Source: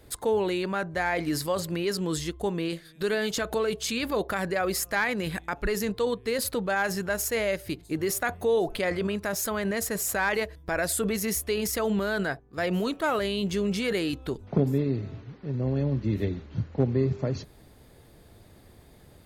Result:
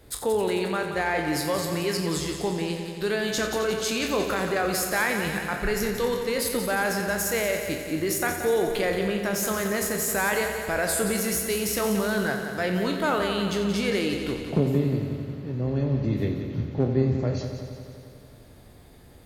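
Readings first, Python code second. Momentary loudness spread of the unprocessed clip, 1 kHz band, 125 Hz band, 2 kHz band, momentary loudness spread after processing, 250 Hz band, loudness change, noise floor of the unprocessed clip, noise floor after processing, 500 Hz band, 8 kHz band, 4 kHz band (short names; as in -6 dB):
6 LU, +2.5 dB, +2.0 dB, +2.5 dB, 5 LU, +2.0 dB, +2.0 dB, -54 dBFS, -48 dBFS, +2.0 dB, +3.0 dB, +3.0 dB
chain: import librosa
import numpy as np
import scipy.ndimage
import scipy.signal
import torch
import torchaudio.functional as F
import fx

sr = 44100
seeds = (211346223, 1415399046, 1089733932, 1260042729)

y = fx.spec_trails(x, sr, decay_s=0.3)
y = fx.echo_heads(y, sr, ms=89, heads='first and second', feedback_pct=68, wet_db=-11)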